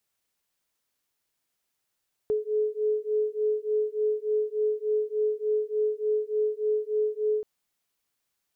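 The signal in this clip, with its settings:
two tones that beat 425 Hz, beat 3.4 Hz, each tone −27 dBFS 5.13 s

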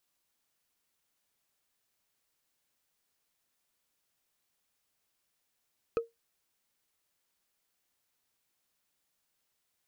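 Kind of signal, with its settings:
struck wood, lowest mode 462 Hz, decay 0.17 s, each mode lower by 8 dB, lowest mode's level −22 dB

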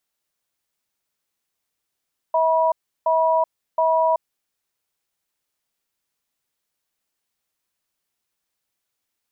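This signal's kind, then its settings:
tone pair in a cadence 645 Hz, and 970 Hz, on 0.38 s, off 0.34 s, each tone −18 dBFS 1.92 s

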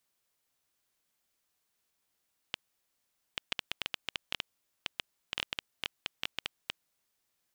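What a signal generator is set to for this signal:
Geiger counter clicks 6.3 per second −14 dBFS 4.70 s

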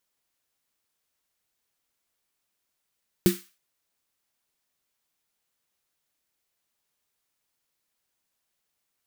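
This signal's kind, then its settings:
synth snare length 0.32 s, tones 190 Hz, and 350 Hz, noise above 1,300 Hz, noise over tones −11.5 dB, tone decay 0.19 s, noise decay 0.36 s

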